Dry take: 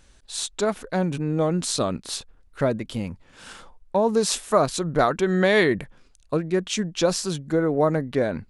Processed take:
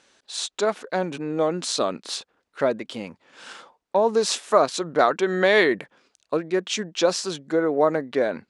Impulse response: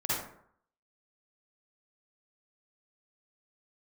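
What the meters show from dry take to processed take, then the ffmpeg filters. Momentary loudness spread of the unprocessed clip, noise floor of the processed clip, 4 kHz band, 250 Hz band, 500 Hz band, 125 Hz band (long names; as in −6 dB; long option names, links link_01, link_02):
12 LU, −77 dBFS, +1.5 dB, −3.5 dB, +1.0 dB, −10.0 dB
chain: -af "highpass=320,lowpass=6800,volume=2dB"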